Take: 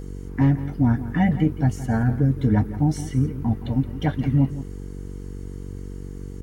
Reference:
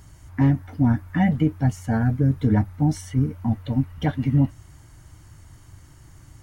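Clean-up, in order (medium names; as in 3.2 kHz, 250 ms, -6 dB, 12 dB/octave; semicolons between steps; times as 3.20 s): de-hum 47.3 Hz, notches 10; inverse comb 170 ms -14 dB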